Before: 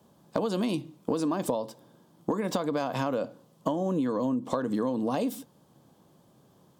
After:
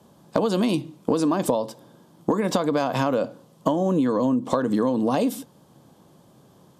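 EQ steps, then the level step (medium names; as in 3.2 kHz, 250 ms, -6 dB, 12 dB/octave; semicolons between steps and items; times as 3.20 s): brick-wall FIR low-pass 14 kHz; +6.5 dB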